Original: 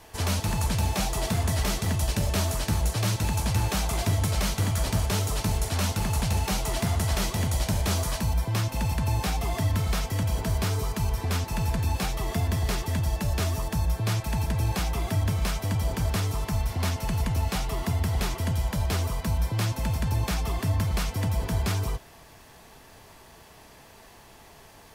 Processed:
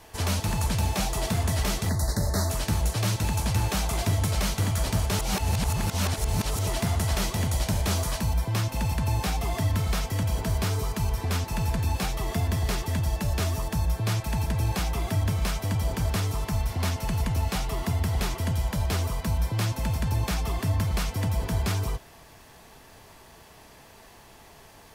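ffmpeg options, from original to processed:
ffmpeg -i in.wav -filter_complex "[0:a]asettb=1/sr,asplit=3[link_01][link_02][link_03];[link_01]atrim=end=1.894[link_04];[link_02]atrim=start=1.89:end=2.5,asetpts=PTS-STARTPTS,afade=type=in:duration=0.004:curve=qsin,afade=type=out:start_time=0.606:duration=0.004:curve=qsin,asuperstop=centerf=2800:order=12:qfactor=1.6[link_05];[link_03]atrim=start=2.496[link_06];[link_04][link_05]acrossfade=duration=0.004:curve1=hsin:curve2=qsin[link_07];[link_07][link_06]acrossfade=duration=0.004:curve1=qsin:curve2=hsin,asplit=3[link_08][link_09][link_10];[link_08]atrim=end=5.192[link_11];[link_09]atrim=start=5.188:end=6.672,asetpts=PTS-STARTPTS,areverse[link_12];[link_10]atrim=start=6.668[link_13];[link_11][link_12]acrossfade=duration=0.004:curve1=hsin:curve2=hsin[link_14];[link_14][link_13]acrossfade=duration=0.004:curve1=hsin:curve2=hsin" out.wav

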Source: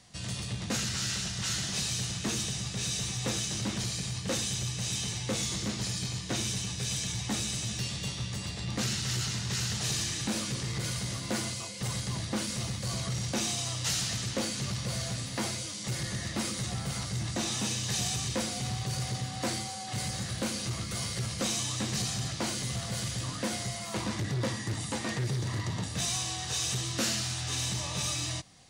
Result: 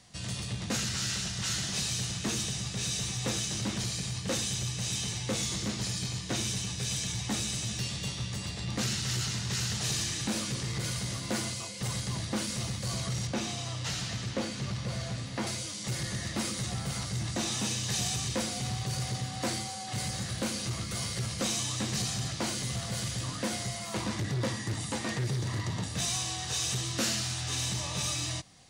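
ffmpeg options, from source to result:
ffmpeg -i in.wav -filter_complex "[0:a]asettb=1/sr,asplit=3[link_01][link_02][link_03];[link_01]atrim=end=13.274[link_04];[link_02]atrim=start=13.27:end=15.47,asetpts=PTS-STARTPTS,afade=type=in:duration=0.004:curve=qsin,afade=type=out:start_time=2.196:duration=0.004:curve=qsin,aemphasis=mode=reproduction:type=50kf[link_05];[link_03]atrim=start=15.466[link_06];[link_04][link_05]acrossfade=duration=0.004:curve1=hsin:curve2=qsin[link_07];[link_07][link_06]acrossfade=duration=0.004:curve1=qsin:curve2=hsin" out.wav

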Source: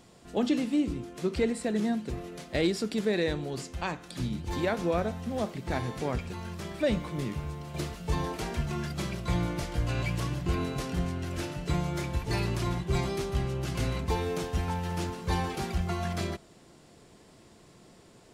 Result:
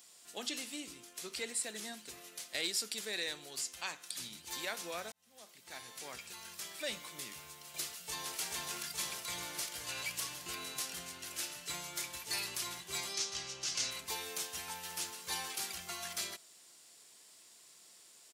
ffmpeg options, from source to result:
ffmpeg -i in.wav -filter_complex "[0:a]asplit=2[link_01][link_02];[link_02]afade=type=in:start_time=7.82:duration=0.01,afade=type=out:start_time=8.39:duration=0.01,aecho=0:1:430|860|1290|1720|2150|2580|3010|3440|3870|4300|4730|5160:0.841395|0.631046|0.473285|0.354964|0.266223|0.199667|0.14975|0.112313|0.0842345|0.0631759|0.0473819|0.0355364[link_03];[link_01][link_03]amix=inputs=2:normalize=0,asettb=1/sr,asplit=3[link_04][link_05][link_06];[link_04]atrim=end=13.144[link_07];[link_05]atrim=start=13.14:end=13.91,asetpts=PTS-STARTPTS,afade=type=in:duration=0.004:curve=qsin,afade=type=out:start_time=0.766:duration=0.004:curve=qsin,lowpass=frequency=5900:width_type=q:width=2.4[link_08];[link_06]atrim=start=13.906[link_09];[link_07][link_08]acrossfade=duration=0.004:curve1=hsin:curve2=qsin[link_10];[link_10][link_09]acrossfade=duration=0.004:curve1=qsin:curve2=hsin,asplit=2[link_11][link_12];[link_11]atrim=end=5.12,asetpts=PTS-STARTPTS,afade=type=out:start_time=5.116:duration=0.004:curve=hsin[link_13];[link_12]atrim=start=5.12,asetpts=PTS-STARTPTS,afade=type=in:duration=1.28[link_14];[link_13][link_14]concat=n=2:v=0:a=1,aderivative,volume=6.5dB" out.wav

